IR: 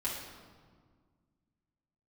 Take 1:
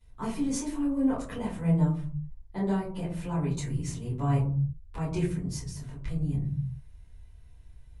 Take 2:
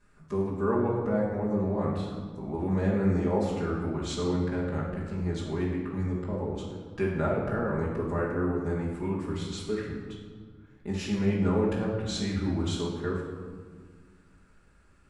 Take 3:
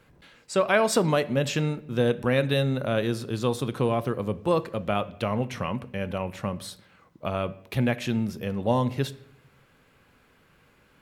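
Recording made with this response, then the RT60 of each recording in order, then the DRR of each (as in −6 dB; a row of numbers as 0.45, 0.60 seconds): 2; 0.45, 1.7, 0.75 seconds; −14.0, −8.0, 14.0 decibels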